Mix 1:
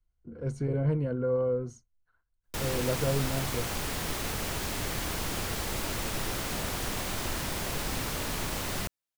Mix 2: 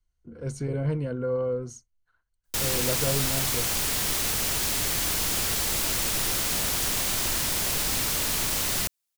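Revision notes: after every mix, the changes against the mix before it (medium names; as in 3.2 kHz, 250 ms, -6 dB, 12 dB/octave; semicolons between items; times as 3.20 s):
master: add treble shelf 2.7 kHz +12 dB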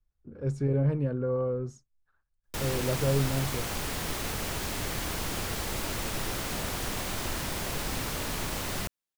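speech: remove rippled EQ curve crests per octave 1.9, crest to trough 8 dB; master: add treble shelf 2.7 kHz -12 dB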